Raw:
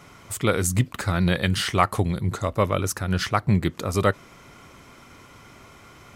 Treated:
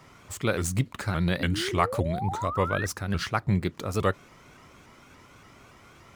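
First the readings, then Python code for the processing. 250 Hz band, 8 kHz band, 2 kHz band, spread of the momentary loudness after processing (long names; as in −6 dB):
−4.5 dB, −6.5 dB, −3.0 dB, 5 LU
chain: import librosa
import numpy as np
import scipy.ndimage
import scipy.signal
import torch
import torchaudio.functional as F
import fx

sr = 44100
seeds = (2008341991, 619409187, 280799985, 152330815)

y = scipy.ndimage.median_filter(x, 3, mode='constant')
y = fx.spec_paint(y, sr, seeds[0], shape='rise', start_s=1.4, length_s=1.47, low_hz=250.0, high_hz=1800.0, level_db=-29.0)
y = fx.vibrato_shape(y, sr, shape='saw_up', rate_hz=3.5, depth_cents=160.0)
y = F.gain(torch.from_numpy(y), -4.5).numpy()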